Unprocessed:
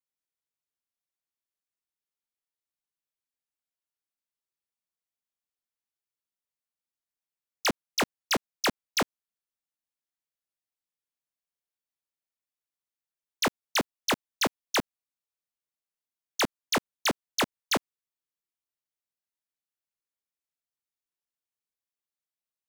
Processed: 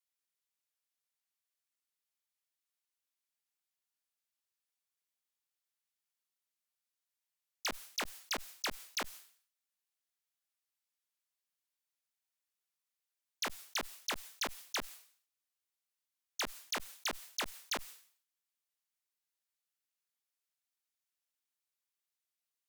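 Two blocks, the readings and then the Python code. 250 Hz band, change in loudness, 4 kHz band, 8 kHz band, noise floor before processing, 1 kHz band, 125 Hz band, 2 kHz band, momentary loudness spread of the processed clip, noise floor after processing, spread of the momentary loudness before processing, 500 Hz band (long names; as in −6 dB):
−17.0 dB, −10.0 dB, −9.0 dB, −7.5 dB, below −85 dBFS, −11.5 dB, −18.5 dB, −10.0 dB, 8 LU, below −85 dBFS, 3 LU, −14.5 dB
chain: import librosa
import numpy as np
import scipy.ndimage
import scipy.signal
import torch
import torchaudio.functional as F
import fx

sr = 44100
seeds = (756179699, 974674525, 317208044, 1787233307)

y = fx.highpass(x, sr, hz=1400.0, slope=6)
y = fx.level_steps(y, sr, step_db=19)
y = fx.clip_asym(y, sr, top_db=-34.5, bottom_db=-27.5)
y = fx.sustainer(y, sr, db_per_s=110.0)
y = y * 10.0 ** (4.0 / 20.0)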